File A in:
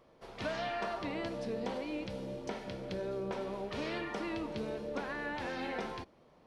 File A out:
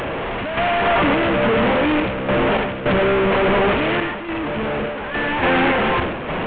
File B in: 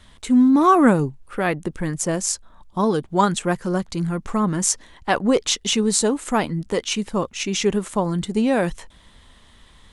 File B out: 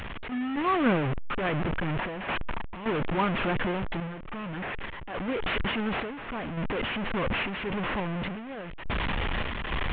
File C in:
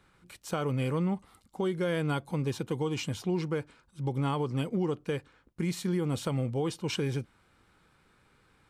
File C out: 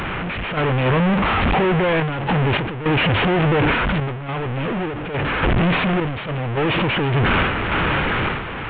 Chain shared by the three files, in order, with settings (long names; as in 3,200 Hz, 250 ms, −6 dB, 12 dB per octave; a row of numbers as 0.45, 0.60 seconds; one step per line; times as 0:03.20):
linear delta modulator 16 kbit/s, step −12 dBFS
sample-and-hold tremolo, depth 80%
level that may fall only so fast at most 51 dB per second
normalise the peak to −12 dBFS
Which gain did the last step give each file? +2.5, −9.0, +2.0 decibels